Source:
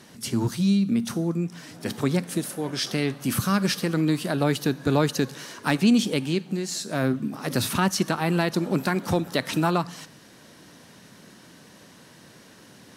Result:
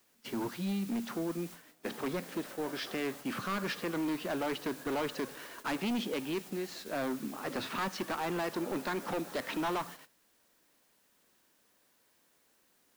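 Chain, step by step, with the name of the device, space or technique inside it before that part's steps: aircraft radio (band-pass 320–2600 Hz; hard clipper -26.5 dBFS, distortion -8 dB; white noise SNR 15 dB; gate -42 dBFS, range -19 dB); trim -3.5 dB

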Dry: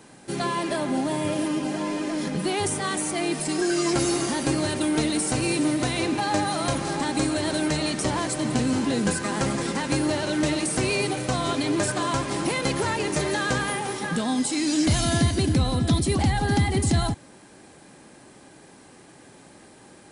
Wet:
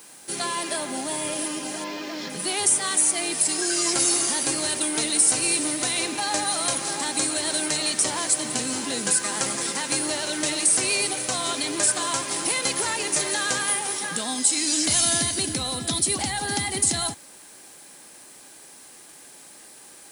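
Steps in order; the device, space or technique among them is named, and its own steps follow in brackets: 1.84–2.30 s: low-pass 5.3 kHz 24 dB/octave; turntable without a phono preamp (RIAA curve recording; white noise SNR 30 dB); trim -2 dB

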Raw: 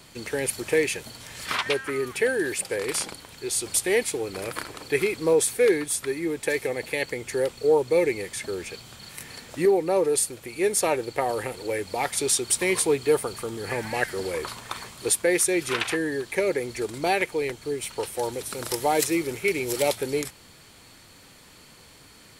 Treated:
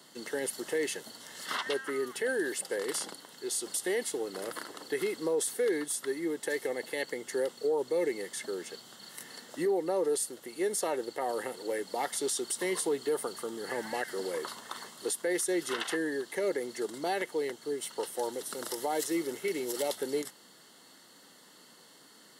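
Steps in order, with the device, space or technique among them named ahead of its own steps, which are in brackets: PA system with an anti-feedback notch (high-pass 190 Hz 24 dB/octave; Butterworth band-stop 2.4 kHz, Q 4.5; peak limiter -17 dBFS, peak gain reduction 8 dB); trim -5 dB

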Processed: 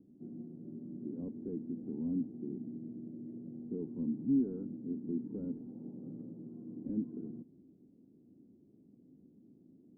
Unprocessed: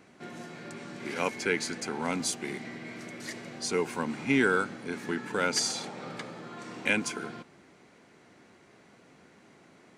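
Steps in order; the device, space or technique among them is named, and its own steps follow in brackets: overdriven synthesiser ladder filter (saturation -23.5 dBFS, distortion -11 dB; four-pole ladder low-pass 320 Hz, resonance 50%); trim +4 dB

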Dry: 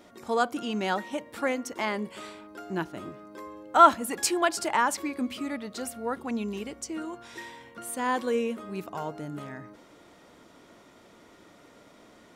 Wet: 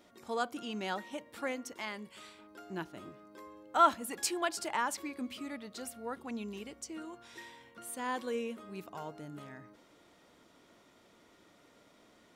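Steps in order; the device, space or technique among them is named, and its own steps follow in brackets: 1.76–2.39 s: peaking EQ 420 Hz -6 dB 2.7 oct; presence and air boost (peaking EQ 3.5 kHz +3 dB 1.5 oct; treble shelf 9.7 kHz +4 dB); trim -9 dB

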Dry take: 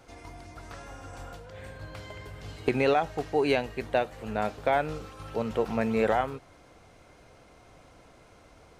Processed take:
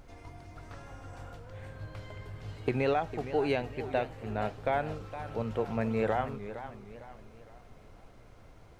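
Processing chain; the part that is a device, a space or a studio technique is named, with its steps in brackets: car interior (peaking EQ 110 Hz +7 dB 0.72 oct; treble shelf 4.2 kHz -6.5 dB; brown noise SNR 19 dB); modulated delay 459 ms, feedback 41%, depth 153 cents, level -12 dB; trim -4.5 dB

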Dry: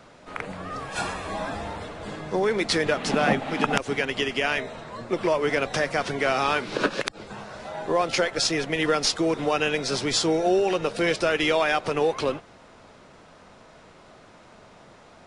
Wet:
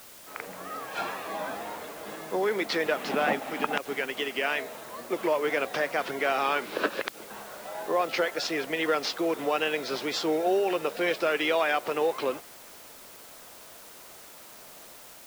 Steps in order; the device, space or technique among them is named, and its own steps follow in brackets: dictaphone (band-pass 290–3800 Hz; level rider gain up to 4 dB; wow and flutter; white noise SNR 19 dB); trim -6.5 dB

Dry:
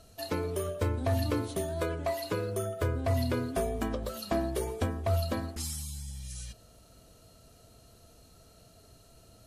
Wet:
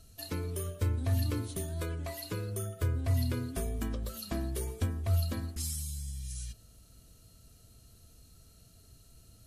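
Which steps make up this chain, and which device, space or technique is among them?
smiley-face EQ (bass shelf 150 Hz +8 dB; peaking EQ 680 Hz -8 dB 1.5 oct; treble shelf 6.4 kHz +7.5 dB); trim -4.5 dB

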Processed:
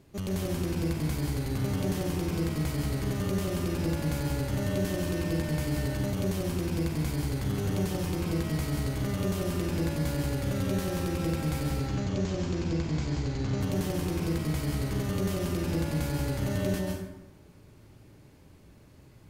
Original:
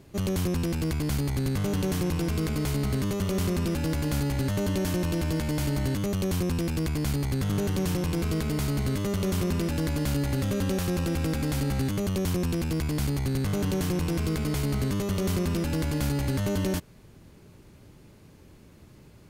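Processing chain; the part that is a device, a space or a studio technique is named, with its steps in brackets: 11.70–13.61 s: Chebyshev low-pass 7.2 kHz, order 5; plate-style reverb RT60 0.84 s, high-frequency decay 0.6×, pre-delay 120 ms, DRR -0.5 dB; saturated reverb return (on a send at -10 dB: reverberation RT60 0.90 s, pre-delay 33 ms + saturation -19.5 dBFS, distortion -16 dB); on the sum: trim -6 dB

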